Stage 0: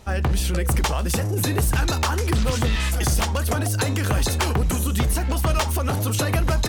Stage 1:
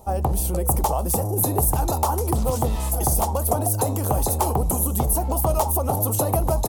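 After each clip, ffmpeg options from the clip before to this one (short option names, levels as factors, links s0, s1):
-af "firequalizer=gain_entry='entry(230,0);entry(810,10);entry(1600,-16);entry(11000,11)':delay=0.05:min_phase=1,volume=0.794"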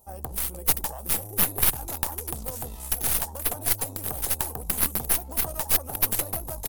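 -af "aemphasis=mode=production:type=50fm,aeval=exprs='2.11*(cos(1*acos(clip(val(0)/2.11,-1,1)))-cos(1*PI/2))+1.06*(cos(2*acos(clip(val(0)/2.11,-1,1)))-cos(2*PI/2))+0.188*(cos(6*acos(clip(val(0)/2.11,-1,1)))-cos(6*PI/2))+0.0944*(cos(7*acos(clip(val(0)/2.11,-1,1)))-cos(7*PI/2))':c=same,volume=0.237"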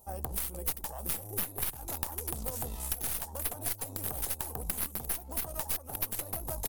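-af "acompressor=threshold=0.0316:ratio=5"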